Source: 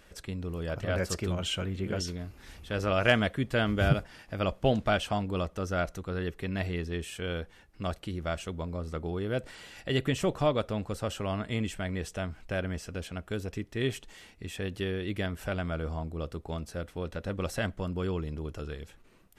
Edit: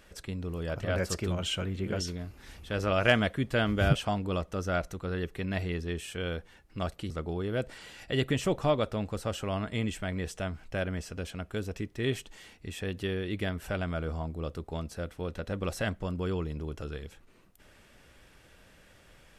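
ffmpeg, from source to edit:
-filter_complex "[0:a]asplit=3[a][b][c];[a]atrim=end=3.952[d];[b]atrim=start=4.988:end=8.142[e];[c]atrim=start=8.868[f];[d][e]acrossfade=d=0.004:c1=hsin:c2=hsin[g];[g][f]acrossfade=d=0.004:c1=hsin:c2=hsin"

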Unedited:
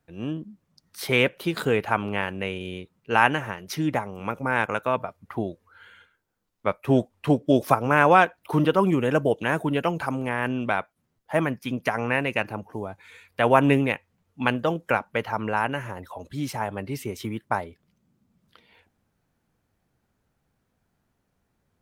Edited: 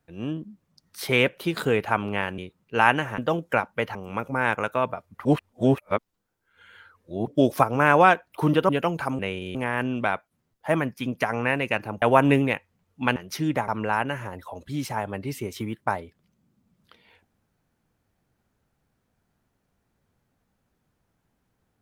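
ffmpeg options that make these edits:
-filter_complex "[0:a]asplit=12[a][b][c][d][e][f][g][h][i][j][k][l];[a]atrim=end=2.382[m];[b]atrim=start=2.738:end=3.542[n];[c]atrim=start=14.548:end=15.322[o];[d]atrim=start=4.058:end=5.362[p];[e]atrim=start=5.358:end=7.382,asetpts=PTS-STARTPTS,areverse[q];[f]atrim=start=7.378:end=8.802[r];[g]atrim=start=9.698:end=10.202[s];[h]atrim=start=2.378:end=2.742[t];[i]atrim=start=10.198:end=12.672[u];[j]atrim=start=13.408:end=14.552[v];[k]atrim=start=3.538:end=4.062[w];[l]atrim=start=15.318[x];[m][n]acrossfade=d=0.004:c1=hsin:c2=hsin[y];[y][o]acrossfade=d=0.004:c1=hsin:c2=hsin[z];[z][p]acrossfade=d=0.004:c1=hsin:c2=hsin[aa];[aa][q]acrossfade=d=0.004:c1=hsin:c2=hsin[ab];[ab][r]acrossfade=d=0.004:c1=hsin:c2=hsin[ac];[ac][s]acrossfade=d=0.004:c1=hsin:c2=hsin[ad];[ad][t]acrossfade=d=0.004:c1=hsin:c2=hsin[ae];[ae][u]acrossfade=d=0.004:c1=hsin:c2=hsin[af];[af][v]acrossfade=d=0.004:c1=hsin:c2=hsin[ag];[ag][w]acrossfade=d=0.004:c1=hsin:c2=hsin[ah];[ah][x]acrossfade=d=0.004:c1=hsin:c2=hsin"

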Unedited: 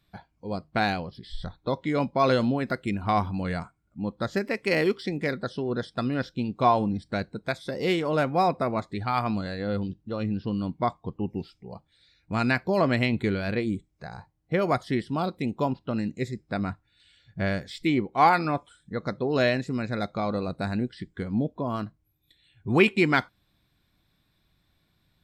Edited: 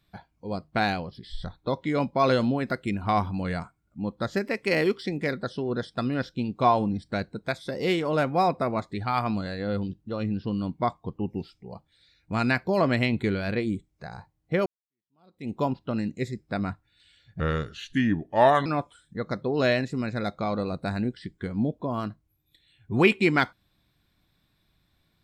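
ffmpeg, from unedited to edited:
-filter_complex "[0:a]asplit=4[a][b][c][d];[a]atrim=end=14.66,asetpts=PTS-STARTPTS,afade=t=out:st=14.656:d=0.004:c=hsin[e];[b]atrim=start=14.66:end=17.404,asetpts=PTS-STARTPTS,afade=t=in:d=0.85:c=exp[f];[c]atrim=start=17.4:end=18.42,asetpts=PTS-STARTPTS,asetrate=35721,aresample=44100,atrim=end_sample=55533,asetpts=PTS-STARTPTS[g];[d]atrim=start=18.416[h];[e][f]concat=n=2:v=0:a=1[i];[i][g]acrossfade=d=0.004:c1=hsin:c2=hsin[j];[j][h]acrossfade=d=0.004:c1=hsin:c2=hsin"

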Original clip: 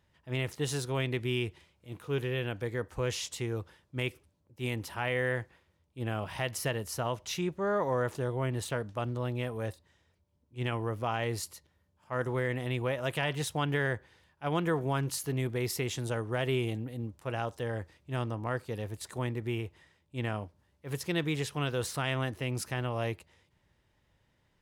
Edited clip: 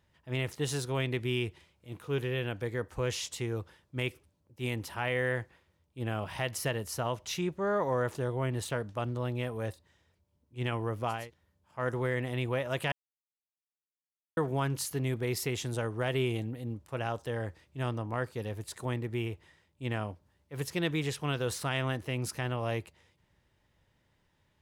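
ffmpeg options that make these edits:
-filter_complex "[0:a]asplit=4[a][b][c][d];[a]atrim=end=11.31[e];[b]atrim=start=11.4:end=13.25,asetpts=PTS-STARTPTS,afade=t=out:st=1.846:d=0.004:c=hsin[f];[c]atrim=start=13.25:end=14.7,asetpts=PTS-STARTPTS,volume=0[g];[d]atrim=start=14.7,asetpts=PTS-STARTPTS,afade=t=in:d=0.004:c=hsin[h];[f][g][h]concat=n=3:v=0:a=1[i];[e][i]acrossfade=d=0.24:c1=tri:c2=tri"

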